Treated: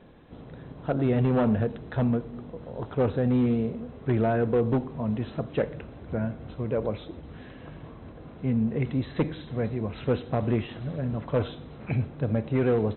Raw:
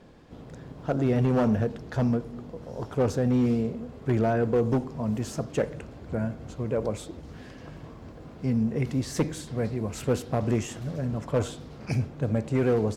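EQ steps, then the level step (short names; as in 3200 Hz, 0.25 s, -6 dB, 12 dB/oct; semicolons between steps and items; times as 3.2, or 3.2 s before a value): brick-wall FIR low-pass 4100 Hz; 0.0 dB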